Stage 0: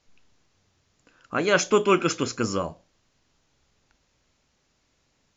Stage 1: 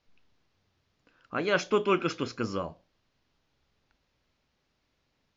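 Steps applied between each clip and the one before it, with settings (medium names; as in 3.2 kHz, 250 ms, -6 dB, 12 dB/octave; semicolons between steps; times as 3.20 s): low-pass 5.1 kHz 24 dB/octave; trim -5.5 dB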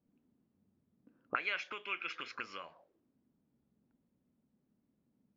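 compression 6:1, threshold -32 dBFS, peak gain reduction 12.5 dB; auto-wah 210–2300 Hz, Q 3.3, up, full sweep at -34.5 dBFS; trim +9.5 dB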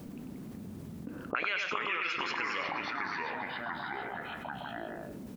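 delay 95 ms -7.5 dB; ever faster or slower copies 150 ms, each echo -3 st, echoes 3, each echo -6 dB; level flattener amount 70%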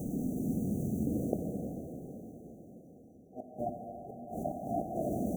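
inverted gate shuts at -27 dBFS, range -35 dB; brick-wall FIR band-stop 790–5800 Hz; plate-style reverb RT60 4.8 s, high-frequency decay 0.9×, DRR 1 dB; trim +8.5 dB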